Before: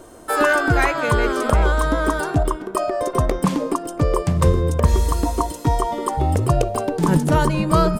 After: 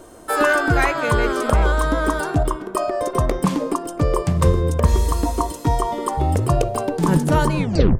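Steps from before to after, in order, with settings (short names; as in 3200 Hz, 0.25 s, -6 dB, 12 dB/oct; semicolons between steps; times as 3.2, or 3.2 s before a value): tape stop at the end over 0.42 s; de-hum 127.6 Hz, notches 16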